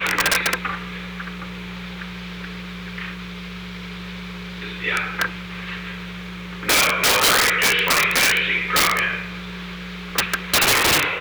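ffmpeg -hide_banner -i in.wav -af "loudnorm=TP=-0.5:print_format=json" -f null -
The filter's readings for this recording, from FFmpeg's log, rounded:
"input_i" : "-18.0",
"input_tp" : "-6.1",
"input_lra" : "12.0",
"input_thresh" : "-30.2",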